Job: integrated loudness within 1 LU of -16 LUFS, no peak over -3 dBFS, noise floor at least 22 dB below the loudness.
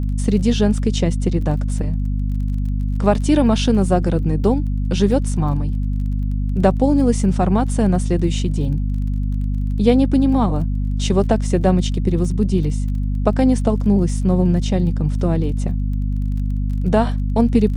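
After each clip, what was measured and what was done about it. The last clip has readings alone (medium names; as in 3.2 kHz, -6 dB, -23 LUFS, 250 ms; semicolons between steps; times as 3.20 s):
tick rate 21 per s; hum 50 Hz; highest harmonic 250 Hz; hum level -17 dBFS; loudness -19.0 LUFS; peak level -1.0 dBFS; loudness target -16.0 LUFS
-> de-click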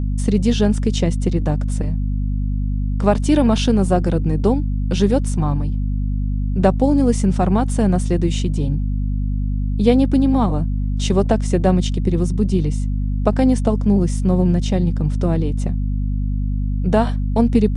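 tick rate 0 per s; hum 50 Hz; highest harmonic 250 Hz; hum level -17 dBFS
-> hum notches 50/100/150/200/250 Hz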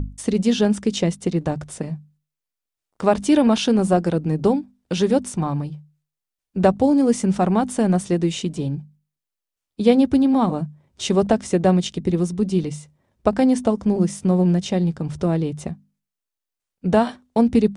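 hum not found; loudness -20.5 LUFS; peak level -3.0 dBFS; loudness target -16.0 LUFS
-> trim +4.5 dB; peak limiter -3 dBFS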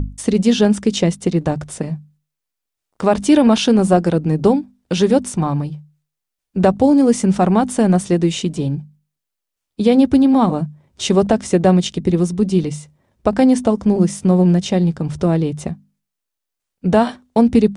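loudness -16.0 LUFS; peak level -3.0 dBFS; noise floor -81 dBFS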